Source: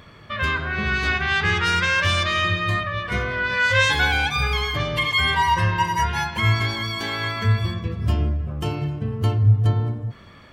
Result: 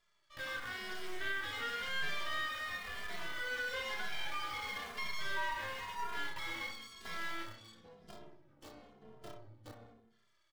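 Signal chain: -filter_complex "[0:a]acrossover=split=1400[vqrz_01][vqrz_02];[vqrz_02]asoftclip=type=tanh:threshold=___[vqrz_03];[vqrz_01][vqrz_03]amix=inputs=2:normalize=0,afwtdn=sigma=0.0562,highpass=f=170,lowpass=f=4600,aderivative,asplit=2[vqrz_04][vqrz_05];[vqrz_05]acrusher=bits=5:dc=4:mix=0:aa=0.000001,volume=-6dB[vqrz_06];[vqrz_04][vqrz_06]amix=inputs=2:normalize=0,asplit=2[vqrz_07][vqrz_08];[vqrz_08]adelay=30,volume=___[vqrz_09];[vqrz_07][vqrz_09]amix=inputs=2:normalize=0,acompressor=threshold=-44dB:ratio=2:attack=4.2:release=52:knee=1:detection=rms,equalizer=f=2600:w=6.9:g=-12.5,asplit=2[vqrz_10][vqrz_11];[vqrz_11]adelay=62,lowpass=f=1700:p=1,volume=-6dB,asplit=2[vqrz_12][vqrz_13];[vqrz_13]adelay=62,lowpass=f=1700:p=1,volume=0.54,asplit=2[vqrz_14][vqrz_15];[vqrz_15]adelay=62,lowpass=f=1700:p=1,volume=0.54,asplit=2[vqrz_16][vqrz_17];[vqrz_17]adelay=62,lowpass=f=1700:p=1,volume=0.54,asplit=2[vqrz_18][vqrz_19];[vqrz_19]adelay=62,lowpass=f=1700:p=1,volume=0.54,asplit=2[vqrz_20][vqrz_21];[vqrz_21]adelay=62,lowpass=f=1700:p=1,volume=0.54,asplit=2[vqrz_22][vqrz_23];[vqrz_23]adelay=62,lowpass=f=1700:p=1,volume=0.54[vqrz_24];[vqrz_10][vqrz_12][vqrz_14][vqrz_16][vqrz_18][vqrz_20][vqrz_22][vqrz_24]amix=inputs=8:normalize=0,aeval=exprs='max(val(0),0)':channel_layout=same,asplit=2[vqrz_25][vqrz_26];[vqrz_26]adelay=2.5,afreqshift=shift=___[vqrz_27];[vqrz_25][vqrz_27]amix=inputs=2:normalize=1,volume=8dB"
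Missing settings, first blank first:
-21.5dB, -5dB, -0.98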